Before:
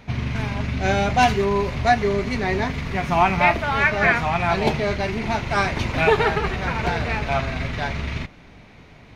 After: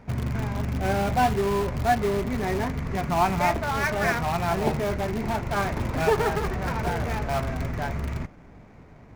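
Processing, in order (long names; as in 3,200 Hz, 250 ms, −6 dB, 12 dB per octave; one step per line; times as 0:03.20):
running median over 15 samples
high-shelf EQ 3,600 Hz −9 dB
in parallel at −10.5 dB: wrap-around overflow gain 19.5 dB
on the sum: level −3.5 dB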